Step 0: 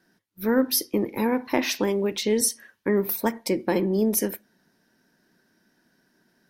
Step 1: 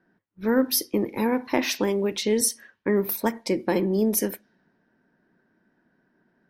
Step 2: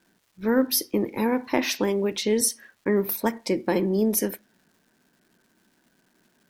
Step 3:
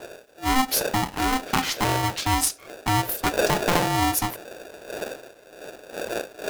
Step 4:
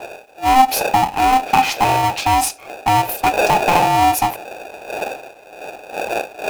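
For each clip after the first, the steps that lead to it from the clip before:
low-pass opened by the level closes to 1700 Hz, open at -22.5 dBFS
crackle 590/s -54 dBFS
wind noise 140 Hz -33 dBFS; polarity switched at an audio rate 520 Hz
in parallel at -2 dB: hard clip -22 dBFS, distortion -9 dB; on the sum: small resonant body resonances 800/2500 Hz, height 15 dB, ringing for 20 ms; gain -2 dB

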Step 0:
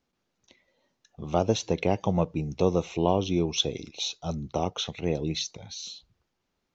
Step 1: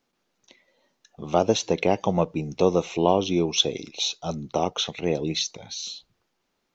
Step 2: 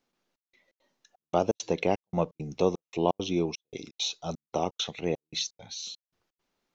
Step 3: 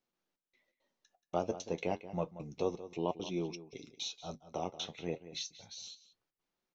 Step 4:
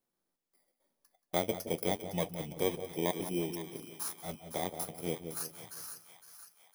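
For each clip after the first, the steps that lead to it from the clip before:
bell 63 Hz -14 dB 2 oct; gain +5 dB
step gate "xxxx..xx." 169 bpm -60 dB; gain -4.5 dB
flange 0.3 Hz, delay 5.3 ms, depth 7.3 ms, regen -54%; outdoor echo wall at 31 m, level -14 dB; gain -5 dB
FFT order left unsorted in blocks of 16 samples; split-band echo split 890 Hz, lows 0.168 s, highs 0.51 s, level -10.5 dB; gain +2 dB

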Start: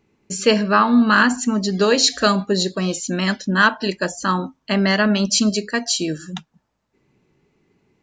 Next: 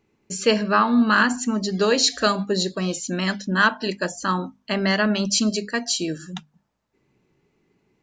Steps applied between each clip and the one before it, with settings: notches 50/100/150/200/250 Hz; gain -3 dB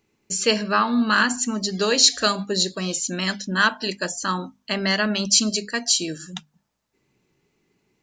high shelf 2900 Hz +10 dB; gain -3 dB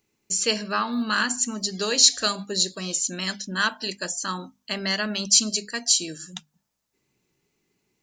high shelf 4800 Hz +10.5 dB; gain -6 dB

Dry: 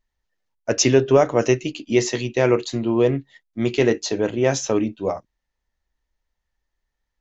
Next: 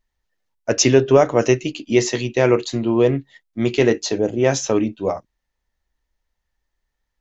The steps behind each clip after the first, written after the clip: spectral gain 4.18–4.4, 850–4600 Hz -11 dB; gain +2 dB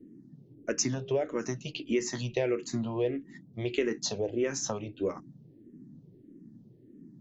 compressor 5:1, threshold -22 dBFS, peak gain reduction 13 dB; band noise 120–330 Hz -47 dBFS; endless phaser -1.6 Hz; gain -2.5 dB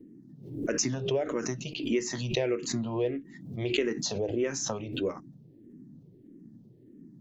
backwards sustainer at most 74 dB/s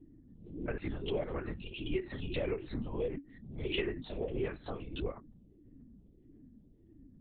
LPC vocoder at 8 kHz whisper; gain -6 dB

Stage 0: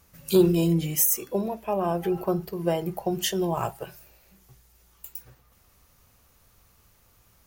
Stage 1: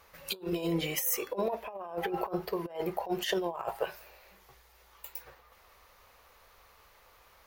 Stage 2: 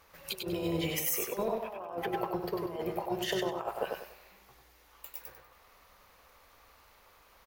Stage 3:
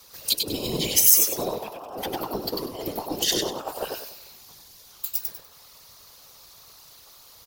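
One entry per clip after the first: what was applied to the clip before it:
graphic EQ 125/250/500/1000/2000/4000/8000 Hz -10/-5/+9/+9/+8/+6/-4 dB; negative-ratio compressor -24 dBFS, ratio -0.5; gain -8 dB
AM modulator 240 Hz, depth 30%; crackle 14/s -51 dBFS; feedback echo 97 ms, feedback 30%, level -4 dB
whisperiser; added harmonics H 4 -28 dB, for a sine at -17.5 dBFS; resonant high shelf 3100 Hz +12.5 dB, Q 1.5; gain +3.5 dB

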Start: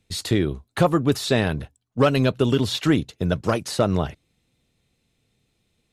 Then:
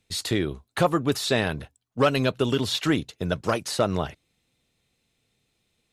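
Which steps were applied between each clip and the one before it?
low shelf 400 Hz -6.5 dB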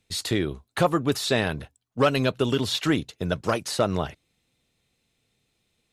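nothing audible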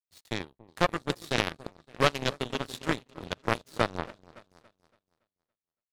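repeats that get brighter 0.282 s, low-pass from 750 Hz, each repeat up 2 oct, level -6 dB; on a send at -14 dB: reverb, pre-delay 40 ms; on the sum: power-law curve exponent 3; gain +5.5 dB

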